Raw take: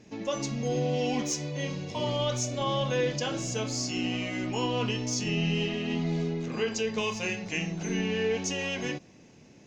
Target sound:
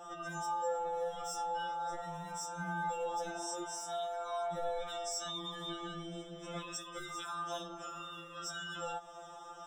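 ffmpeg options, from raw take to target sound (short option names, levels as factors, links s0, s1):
-filter_complex "[0:a]asettb=1/sr,asplit=3[s0][s1][s2];[s0]atrim=end=4.794[s3];[s1]atrim=start=4.79:end=7.11,asetpts=PTS-STARTPTS,afade=t=in:d=0.004:c=qsin,afade=t=out:st=2.316:d=0.004:c=qsin,highpass=f=590:p=1[s4];[s2]atrim=start=7.106[s5];[s3][s4]acrossfade=d=0.004:c1=hsin:c2=qsin[s6];[s6][s5]acrossfade=d=0.004:c1=qsin:c2=hsin,aeval=exprs='clip(val(0),-1,0.0596)':c=same,asuperstop=centerf=4200:order=20:qfactor=1.2,alimiter=level_in=1.88:limit=0.0631:level=0:latency=1:release=82,volume=0.531,aeval=exprs='val(0)*sin(2*PI*1000*n/s)':c=same,acompressor=threshold=0.00562:ratio=6,equalizer=f=1900:w=1.4:g=-13,afftfilt=real='re*2.83*eq(mod(b,8),0)':imag='im*2.83*eq(mod(b,8),0)':win_size=2048:overlap=0.75,volume=4.73"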